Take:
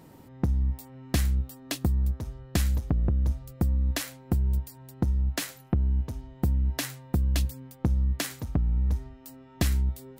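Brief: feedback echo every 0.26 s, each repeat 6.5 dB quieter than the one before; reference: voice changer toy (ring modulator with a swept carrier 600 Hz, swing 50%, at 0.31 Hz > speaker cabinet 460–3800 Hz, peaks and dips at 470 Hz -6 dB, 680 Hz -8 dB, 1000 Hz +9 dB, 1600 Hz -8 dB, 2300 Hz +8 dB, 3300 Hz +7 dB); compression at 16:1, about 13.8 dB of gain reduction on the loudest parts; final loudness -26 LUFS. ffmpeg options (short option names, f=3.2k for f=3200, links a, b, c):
-af "acompressor=threshold=-34dB:ratio=16,aecho=1:1:260|520|780|1040|1300|1560:0.473|0.222|0.105|0.0491|0.0231|0.0109,aeval=exprs='val(0)*sin(2*PI*600*n/s+600*0.5/0.31*sin(2*PI*0.31*n/s))':c=same,highpass=460,equalizer=f=470:t=q:w=4:g=-6,equalizer=f=680:t=q:w=4:g=-8,equalizer=f=1k:t=q:w=4:g=9,equalizer=f=1.6k:t=q:w=4:g=-8,equalizer=f=2.3k:t=q:w=4:g=8,equalizer=f=3.3k:t=q:w=4:g=7,lowpass=f=3.8k:w=0.5412,lowpass=f=3.8k:w=1.3066,volume=16dB"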